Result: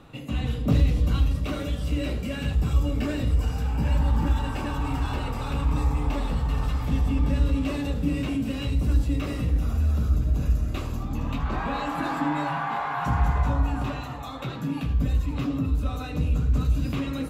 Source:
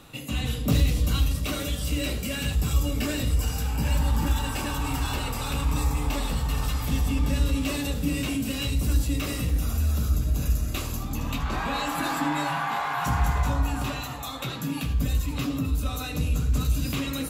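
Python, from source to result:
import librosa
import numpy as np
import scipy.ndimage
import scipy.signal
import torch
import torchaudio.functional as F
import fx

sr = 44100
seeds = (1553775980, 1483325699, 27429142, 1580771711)

y = fx.lowpass(x, sr, hz=1400.0, slope=6)
y = y * librosa.db_to_amplitude(1.5)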